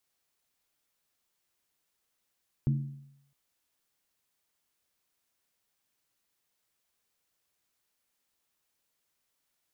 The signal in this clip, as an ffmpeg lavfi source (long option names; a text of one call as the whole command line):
ffmpeg -f lavfi -i "aevalsrc='0.0841*pow(10,-3*t/0.78)*sin(2*PI*140*t)+0.0316*pow(10,-3*t/0.618)*sin(2*PI*223.2*t)+0.0119*pow(10,-3*t/0.534)*sin(2*PI*299*t)+0.00447*pow(10,-3*t/0.515)*sin(2*PI*321.4*t)+0.00168*pow(10,-3*t/0.479)*sin(2*PI*371.4*t)':duration=0.66:sample_rate=44100" out.wav